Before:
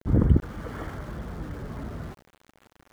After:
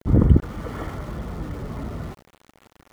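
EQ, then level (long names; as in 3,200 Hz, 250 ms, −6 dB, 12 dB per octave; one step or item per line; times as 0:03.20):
notch filter 1,600 Hz, Q 8.2
+4.5 dB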